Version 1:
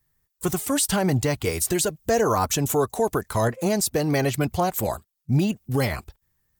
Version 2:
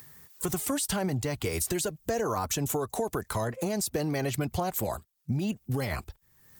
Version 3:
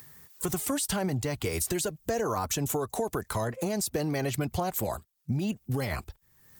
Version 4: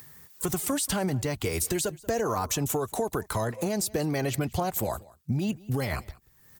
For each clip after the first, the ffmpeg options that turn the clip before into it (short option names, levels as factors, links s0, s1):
-filter_complex "[0:a]acrossover=split=100[s0][s1];[s1]acompressor=mode=upward:threshold=0.02:ratio=2.5[s2];[s0][s2]amix=inputs=2:normalize=0,alimiter=limit=0.168:level=0:latency=1:release=63,acompressor=threshold=0.0501:ratio=6"
-af anull
-af "aecho=1:1:184:0.075,volume=1.19"